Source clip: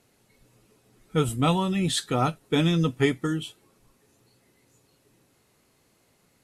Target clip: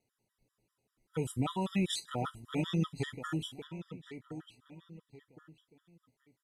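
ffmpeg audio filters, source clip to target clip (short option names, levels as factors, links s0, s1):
-filter_complex "[0:a]agate=range=0.2:threshold=0.002:ratio=16:detection=peak,alimiter=limit=0.106:level=0:latency=1:release=257,asplit=2[s0][s1];[s1]adelay=1065,lowpass=f=4200:p=1,volume=0.282,asplit=2[s2][s3];[s3]adelay=1065,lowpass=f=4200:p=1,volume=0.32,asplit=2[s4][s5];[s5]adelay=1065,lowpass=f=4200:p=1,volume=0.32[s6];[s2][s4][s6]amix=inputs=3:normalize=0[s7];[s0][s7]amix=inputs=2:normalize=0,afftfilt=real='re*gt(sin(2*PI*5.1*pts/sr)*(1-2*mod(floor(b*sr/1024/970),2)),0)':imag='im*gt(sin(2*PI*5.1*pts/sr)*(1-2*mod(floor(b*sr/1024/970),2)),0)':win_size=1024:overlap=0.75,volume=0.794"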